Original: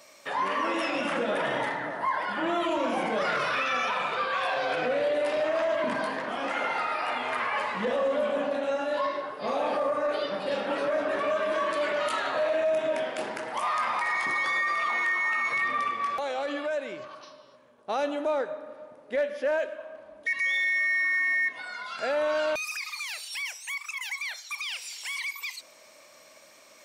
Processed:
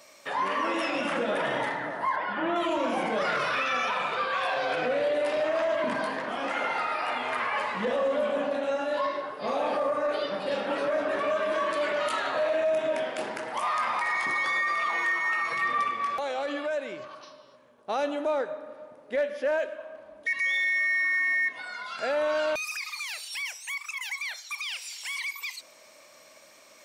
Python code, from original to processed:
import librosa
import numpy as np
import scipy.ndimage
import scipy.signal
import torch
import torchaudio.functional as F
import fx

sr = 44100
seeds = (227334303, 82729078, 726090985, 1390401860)

y = fx.lowpass(x, sr, hz=3100.0, slope=12, at=(2.16, 2.56))
y = fx.comb(y, sr, ms=6.1, depth=0.53, at=(14.9, 15.83))
y = fx.low_shelf(y, sr, hz=320.0, db=-9.0, at=(24.54, 25.1))